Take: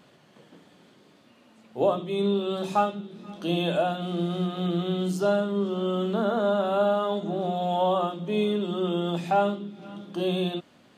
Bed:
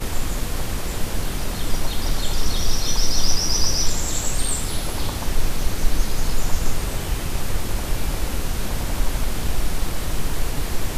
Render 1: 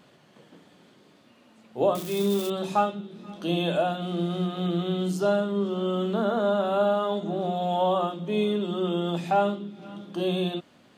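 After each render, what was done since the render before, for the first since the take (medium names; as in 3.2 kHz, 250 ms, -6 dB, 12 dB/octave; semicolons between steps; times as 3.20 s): 1.95–2.50 s: zero-crossing glitches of -25 dBFS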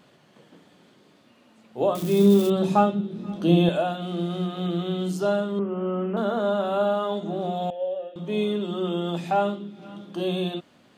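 2.02–3.69 s: bass shelf 450 Hz +12 dB; 5.59–6.17 s: steep low-pass 2.7 kHz 72 dB/octave; 7.70–8.16 s: vowel filter e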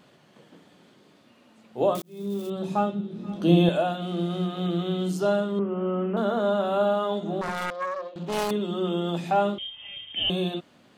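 2.02–3.49 s: fade in; 7.41–8.51 s: self-modulated delay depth 0.96 ms; 9.58–10.30 s: frequency inversion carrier 3.4 kHz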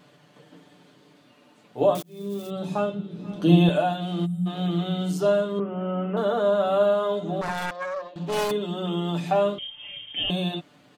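4.25–4.46 s: time-frequency box 220–7300 Hz -26 dB; comb 6.8 ms, depth 65%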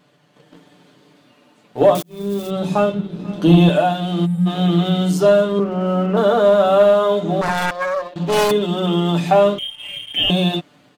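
waveshaping leveller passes 1; level rider gain up to 6 dB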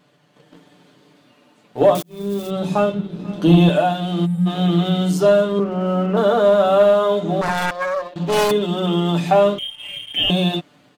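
trim -1 dB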